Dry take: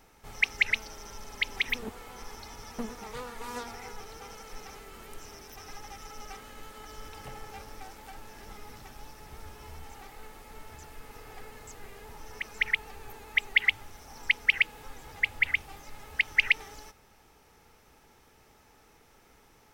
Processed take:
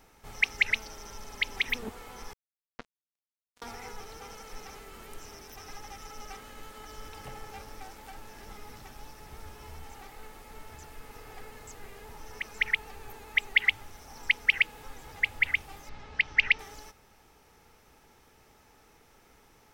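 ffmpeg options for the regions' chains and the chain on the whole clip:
ffmpeg -i in.wav -filter_complex "[0:a]asettb=1/sr,asplit=3[link_01][link_02][link_03];[link_01]atrim=end=2.334[link_04];[link_02]atrim=start=2.33:end=3.62,asetpts=PTS-STARTPTS,afade=type=in:duration=0.004:curve=qsin,afade=type=out:start_time=1.286:duration=0.004:curve=qsin,lowpass=frequency=5200:width=0.5412,lowpass=frequency=5200:width=1.3066,acrusher=bits=3:mix=0:aa=0.5[link_05];[link_03]atrim=start=3.616[link_06];[link_04][link_05]acrossfade=duration=0.004:curve1=hsin:curve2=qsin[link_07];[link_07][link_06]acrossfade=duration=0.004:curve1=qsin:curve2=hsin,asettb=1/sr,asplit=3[link_08][link_09][link_10];[link_08]atrim=end=15.894[link_11];[link_09]atrim=start=15.89:end=16.59,asetpts=PTS-STARTPTS,afade=type=in:duration=0.004:curve=qsin,afade=type=out:start_time=0.696:duration=0.004:curve=qsin,lowpass=frequency=5500:width=0.5412,lowpass=frequency=5500:width=1.3066,aeval=exprs='val(0)+0.00224*(sin(2*PI*60*n/s)+sin(2*PI*2*60*n/s)/2+sin(2*PI*3*60*n/s)/3+sin(2*PI*4*60*n/s)/4+sin(2*PI*5*60*n/s)/5)':channel_layout=same[link_12];[link_10]atrim=start=16.586[link_13];[link_11][link_12]acrossfade=duration=0.004:curve1=hsin:curve2=qsin[link_14];[link_14][link_13]acrossfade=duration=0.004:curve1=qsin:curve2=hsin" out.wav

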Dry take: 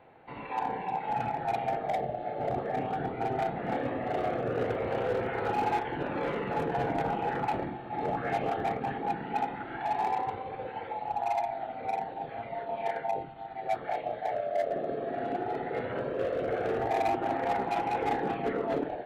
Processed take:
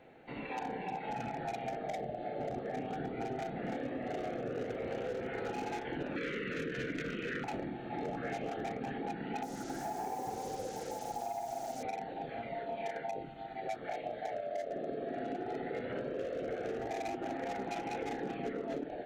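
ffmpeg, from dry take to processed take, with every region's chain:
ffmpeg -i in.wav -filter_complex "[0:a]asettb=1/sr,asplit=3[link_01][link_02][link_03];[link_01]atrim=end=6.164[link_04];[link_02]atrim=start=6.16:end=7.44,asetpts=PTS-STARTPTS,afade=type=in:duration=0.004:curve=qsin,afade=type=out:start_time=1.276:duration=0.004:curve=qsin,asuperstop=centerf=800:order=4:qfactor=0.9,equalizer=frequency=1700:width=0.37:gain=9[link_05];[link_03]atrim=start=7.436[link_06];[link_04][link_05]acrossfade=duration=0.004:curve1=hsin:curve2=qsin[link_07];[link_07][link_06]acrossfade=duration=0.004:curve1=qsin:curve2=hsin,asettb=1/sr,asplit=3[link_08][link_09][link_10];[link_08]atrim=end=9.434[link_11];[link_09]atrim=start=9.43:end=11.83,asetpts=PTS-STARTPTS,afade=type=in:duration=0.004:curve=qsin,afade=type=out:start_time=2.396:duration=0.004:curve=qsin,lowpass=1200,acrusher=bits=7:mix=0:aa=0.5,aecho=1:1:264:0.473,atrim=end_sample=105840[link_12];[link_10]atrim=start=11.826[link_13];[link_11][link_12]acrossfade=duration=0.004:curve1=hsin:curve2=qsin[link_14];[link_14][link_13]acrossfade=duration=0.004:curve1=qsin:curve2=hsin,equalizer=frequency=100:width_type=o:width=0.67:gain=-6,equalizer=frequency=250:width_type=o:width=0.67:gain=3,equalizer=frequency=1000:width_type=o:width=0.67:gain=-11,equalizer=frequency=6300:width_type=o:width=0.67:gain=9,acompressor=threshold=-36dB:ratio=6,volume=1dB" out.wav

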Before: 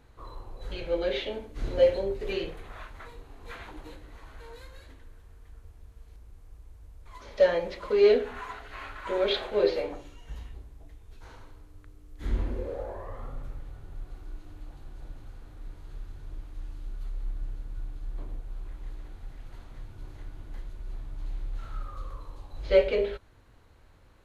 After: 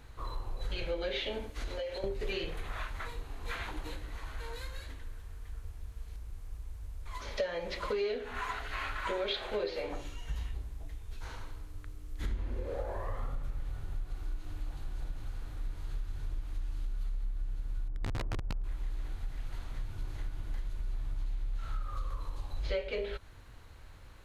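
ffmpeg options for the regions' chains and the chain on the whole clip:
ffmpeg -i in.wav -filter_complex "[0:a]asettb=1/sr,asplit=3[link_01][link_02][link_03];[link_01]atrim=end=1.504[link_04];[link_02]atrim=start=1.5:end=2.04,asetpts=PTS-STARTPTS,afade=type=in:duration=0.004:curve=qsin,afade=type=out:start_time=0.536:duration=0.004:curve=qsin,highpass=frequency=41:width=0.5412,highpass=frequency=41:width=1.3066,acompressor=threshold=-34dB:ratio=6:attack=3.2:release=140:knee=1:detection=peak,equalizer=frequency=150:width=0.7:gain=-13[link_05];[link_03]atrim=start=2.036[link_06];[link_04][link_05]acrossfade=duration=0.004:curve1=hsin:curve2=qsin[link_07];[link_07][link_06]acrossfade=duration=0.004:curve1=qsin:curve2=hsin,asettb=1/sr,asplit=3[link_08][link_09][link_10];[link_08]atrim=end=17.884[link_11];[link_09]atrim=start=17.88:end=18.64,asetpts=PTS-STARTPTS,afade=type=in:duration=0.004:curve=qsin,afade=type=out:start_time=0.756:duration=0.004:curve=qsin,bandreject=frequency=3800:width=16,aeval=exprs='(mod(31.6*val(0)+1,2)-1)/31.6':channel_layout=same,adynamicsmooth=sensitivity=5.5:basefreq=710[link_12];[link_10]atrim=start=18.636[link_13];[link_11][link_12]acrossfade=duration=0.004:curve1=hsin:curve2=qsin[link_14];[link_14][link_13]acrossfade=duration=0.004:curve1=qsin:curve2=hsin,equalizer=frequency=360:width=0.39:gain=-6.5,acompressor=threshold=-38dB:ratio=8,volume=7dB" out.wav

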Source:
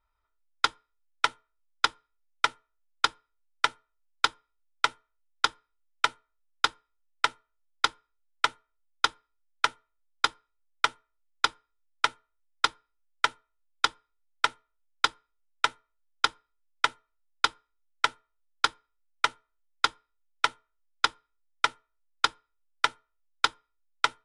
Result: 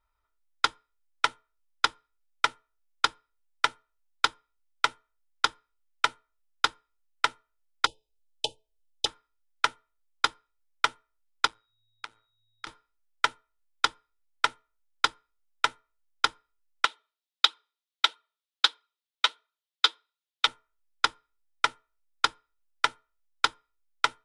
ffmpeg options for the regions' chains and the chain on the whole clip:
ffmpeg -i in.wav -filter_complex "[0:a]asettb=1/sr,asplit=3[link_01][link_02][link_03];[link_01]atrim=end=7.864[link_04];[link_02]atrim=start=7.86:end=9.06,asetpts=PTS-STARTPTS,afade=type=in:duration=0.004:curve=qsin,afade=type=out:start_time=1.196:duration=0.004:curve=qsin,asuperstop=centerf=1500:order=20:qfactor=0.84,aecho=1:1:2:0.49,atrim=end_sample=52920[link_05];[link_03]atrim=start=9.056[link_06];[link_04][link_05]acrossfade=duration=0.004:curve1=hsin:curve2=qsin[link_07];[link_07][link_06]acrossfade=duration=0.004:curve1=qsin:curve2=hsin,asettb=1/sr,asplit=3[link_08][link_09][link_10];[link_08]atrim=end=11.474[link_11];[link_09]atrim=start=11.47:end=12.67,asetpts=PTS-STARTPTS,afade=type=in:duration=0.004:curve=qsin,afade=type=out:start_time=1.196:duration=0.004:curve=qsin,acompressor=threshold=-41dB:ratio=2.5:attack=3.2:release=140:knee=1:detection=peak,tremolo=f=110:d=0.75,aeval=exprs='val(0)+0.000178*sin(2*PI*3800*n/s)':channel_layout=same[link_12];[link_10]atrim=start=12.666[link_13];[link_11][link_12]acrossfade=duration=0.004:curve1=hsin:curve2=qsin[link_14];[link_14][link_13]acrossfade=duration=0.004:curve1=qsin:curve2=hsin,asettb=1/sr,asplit=3[link_15][link_16][link_17];[link_15]atrim=end=16.854[link_18];[link_16]atrim=start=16.85:end=20.47,asetpts=PTS-STARTPTS,afade=type=in:duration=0.004:curve=qsin,afade=type=out:start_time=3.616:duration=0.004:curve=qsin,highpass=frequency=320:width=0.5412,highpass=frequency=320:width=1.3066,equalizer=frequency=3600:width_type=o:width=0.88:gain=13,flanger=delay=0.7:depth=8.4:regen=31:speed=1.5:shape=sinusoidal[link_19];[link_17]atrim=start=20.466[link_20];[link_18][link_19]acrossfade=duration=0.004:curve1=hsin:curve2=qsin[link_21];[link_21][link_20]acrossfade=duration=0.004:curve1=qsin:curve2=hsin" out.wav

